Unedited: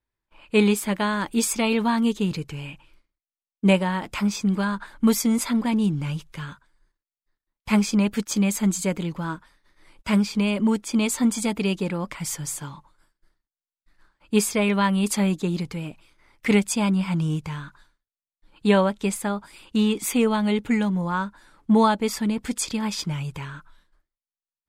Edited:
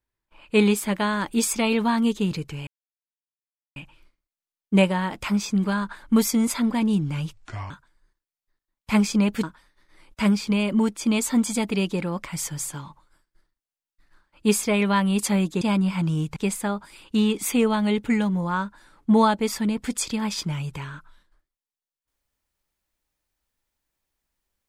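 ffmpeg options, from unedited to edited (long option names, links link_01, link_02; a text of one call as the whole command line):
ffmpeg -i in.wav -filter_complex "[0:a]asplit=7[link_01][link_02][link_03][link_04][link_05][link_06][link_07];[link_01]atrim=end=2.67,asetpts=PTS-STARTPTS,afade=type=out:start_time=2.666:duration=0.004:curve=hsin,apad=pad_dur=1.09[link_08];[link_02]atrim=start=2.67:end=6.244,asetpts=PTS-STARTPTS,afade=type=in:duration=0.004:curve=hsin[link_09];[link_03]atrim=start=6.24:end=6.49,asetpts=PTS-STARTPTS,asetrate=29547,aresample=44100,atrim=end_sample=16455,asetpts=PTS-STARTPTS[link_10];[link_04]atrim=start=6.486:end=8.222[link_11];[link_05]atrim=start=9.308:end=15.492[link_12];[link_06]atrim=start=16.738:end=17.492[link_13];[link_07]atrim=start=18.968[link_14];[link_08][link_09]concat=n=2:v=0:a=1[link_15];[link_15][link_10]acrossfade=duration=0.004:curve1=hsin:curve2=hsin[link_16];[link_16][link_11]acrossfade=duration=0.004:curve1=hsin:curve2=hsin[link_17];[link_17][link_12]acrossfade=duration=0.004:curve1=hsin:curve2=hsin[link_18];[link_18][link_13]acrossfade=duration=0.004:curve1=hsin:curve2=hsin[link_19];[link_19][link_14]acrossfade=duration=0.004:curve1=hsin:curve2=hsin" out.wav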